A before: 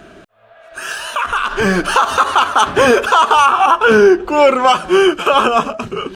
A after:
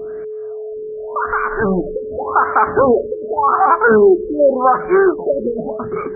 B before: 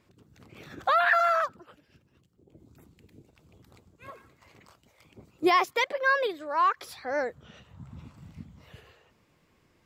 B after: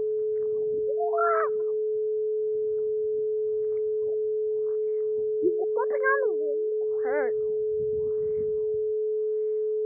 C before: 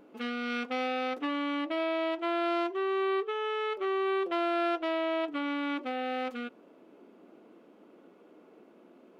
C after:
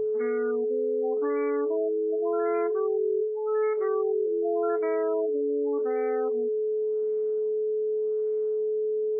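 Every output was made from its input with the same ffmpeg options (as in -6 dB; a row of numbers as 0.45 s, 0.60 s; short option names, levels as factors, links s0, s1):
-af "aeval=exprs='val(0)+0.0708*sin(2*PI*430*n/s)':c=same,bandreject=f=50:t=h:w=6,bandreject=f=100:t=h:w=6,bandreject=f=150:t=h:w=6,bandreject=f=200:t=h:w=6,afftfilt=real='re*lt(b*sr/1024,550*pow(2400/550,0.5+0.5*sin(2*PI*0.87*pts/sr)))':imag='im*lt(b*sr/1024,550*pow(2400/550,0.5+0.5*sin(2*PI*0.87*pts/sr)))':win_size=1024:overlap=0.75,volume=0.891"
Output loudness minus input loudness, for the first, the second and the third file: -3.0 LU, -1.0 LU, +4.5 LU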